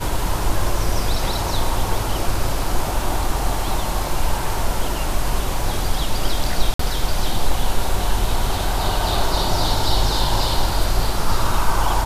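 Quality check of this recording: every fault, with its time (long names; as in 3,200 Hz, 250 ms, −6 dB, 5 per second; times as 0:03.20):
0:06.74–0:06.79: drop-out 54 ms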